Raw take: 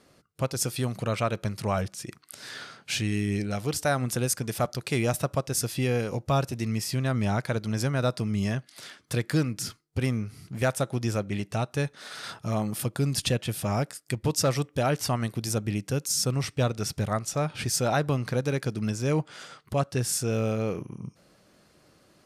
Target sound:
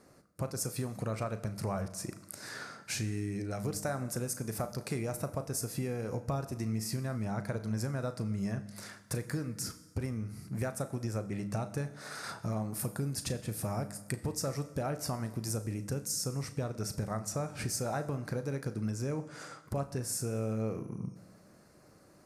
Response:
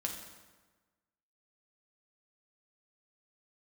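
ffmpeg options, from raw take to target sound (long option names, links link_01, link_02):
-filter_complex "[0:a]equalizer=frequency=3200:width=1.9:gain=-14.5,acompressor=threshold=-32dB:ratio=6,asplit=2[link_01][link_02];[1:a]atrim=start_sample=2205,adelay=36[link_03];[link_02][link_03]afir=irnorm=-1:irlink=0,volume=-11dB[link_04];[link_01][link_04]amix=inputs=2:normalize=0"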